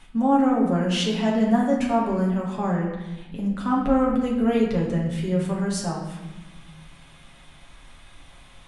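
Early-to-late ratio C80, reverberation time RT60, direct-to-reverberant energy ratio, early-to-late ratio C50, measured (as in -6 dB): 5.5 dB, 1.1 s, -4.0 dB, 3.0 dB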